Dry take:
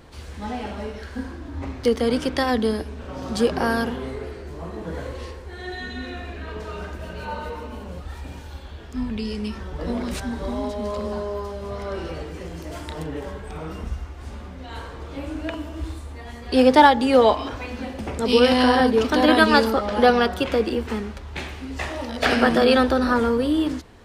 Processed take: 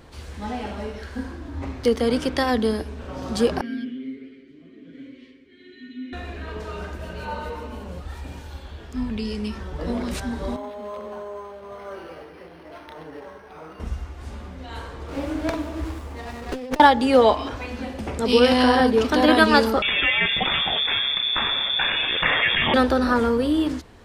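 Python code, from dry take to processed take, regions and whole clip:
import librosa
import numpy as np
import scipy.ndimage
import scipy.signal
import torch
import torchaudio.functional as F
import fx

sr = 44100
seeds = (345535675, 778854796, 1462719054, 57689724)

y = fx.chain(x, sr, fx.vowel_filter(vowel='i'),
    fx.comb(ms=7.5, depth=0.81), at=(3.61, 6.13))
y = fx.chain(y, sr, fx.highpass(hz=780.0, slope=6),
    fx.high_shelf(hz=2700.0, db=-7.5),
    fx.resample_linear(factor=6), at=(10.56, 13.8))
y = fx.chain(y, sr, fx.low_shelf(hz=190.0, db=-6.5),
    fx.over_compress(threshold_db=-27.0, ratio=-1.0),
    fx.running_max(window=9), at=(15.08, 16.8))
y = fx.chain(y, sr, fx.cheby1_bandstop(low_hz=150.0, high_hz=1000.0, order=2),
    fx.freq_invert(carrier_hz=3500),
    fx.env_flatten(amount_pct=70), at=(19.82, 22.74))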